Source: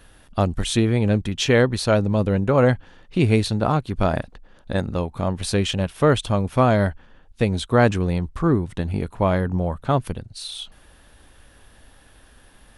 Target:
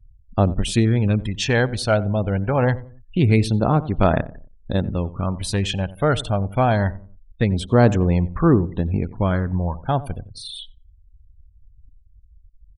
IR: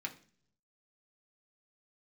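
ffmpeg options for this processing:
-filter_complex "[0:a]afftfilt=real='re*gte(hypot(re,im),0.0158)':imag='im*gte(hypot(re,im),0.0158)':win_size=1024:overlap=0.75,asplit=2[s0][s1];[s1]adelay=90,lowpass=f=830:p=1,volume=0.168,asplit=2[s2][s3];[s3]adelay=90,lowpass=f=830:p=1,volume=0.39,asplit=2[s4][s5];[s5]adelay=90,lowpass=f=830:p=1,volume=0.39[s6];[s2][s4][s6]amix=inputs=3:normalize=0[s7];[s0][s7]amix=inputs=2:normalize=0,aphaser=in_gain=1:out_gain=1:delay=1.4:decay=0.45:speed=0.24:type=sinusoidal,volume=0.841"

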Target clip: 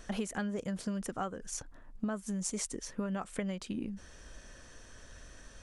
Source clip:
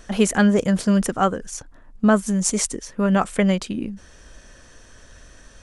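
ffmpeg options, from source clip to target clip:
-af "acompressor=threshold=0.0447:ratio=10,volume=0.531"

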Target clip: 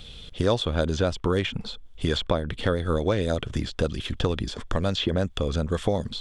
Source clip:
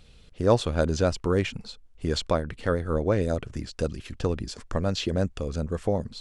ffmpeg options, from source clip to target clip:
-filter_complex "[0:a]acrossover=split=790|2100[s0][s1][s2];[s0]acompressor=threshold=0.0282:ratio=4[s3];[s1]acompressor=threshold=0.00891:ratio=4[s4];[s2]acompressor=threshold=0.00282:ratio=4[s5];[s3][s4][s5]amix=inputs=3:normalize=0,equalizer=f=3400:t=o:w=0.3:g=14,volume=2.66"

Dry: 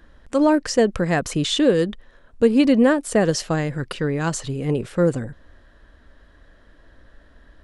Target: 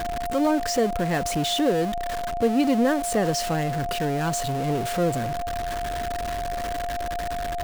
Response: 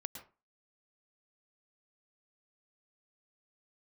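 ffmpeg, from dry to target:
-af "aeval=exprs='val(0)+0.5*0.106*sgn(val(0))':c=same,aeval=exprs='val(0)+0.1*sin(2*PI*700*n/s)':c=same,volume=0.422"

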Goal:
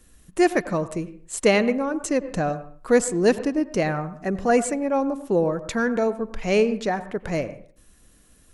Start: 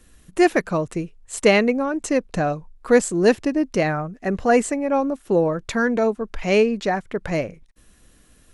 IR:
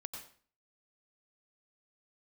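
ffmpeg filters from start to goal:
-filter_complex "[0:a]highshelf=f=3800:g=7,asplit=2[s0][s1];[1:a]atrim=start_sample=2205,lowpass=3300,highshelf=f=2600:g=-11[s2];[s1][s2]afir=irnorm=-1:irlink=0,volume=0.75[s3];[s0][s3]amix=inputs=2:normalize=0,volume=0.531"

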